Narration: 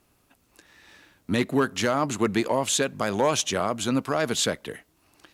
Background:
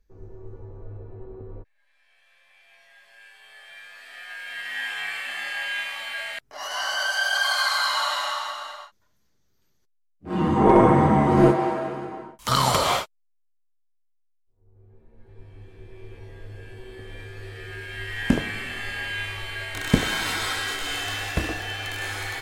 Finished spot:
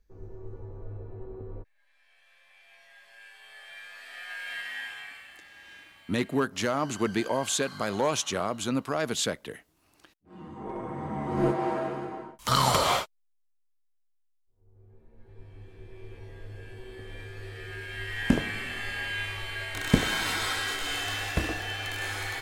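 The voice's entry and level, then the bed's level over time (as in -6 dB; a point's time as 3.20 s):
4.80 s, -4.0 dB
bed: 4.53 s -1 dB
5.51 s -22 dB
10.82 s -22 dB
11.77 s -2.5 dB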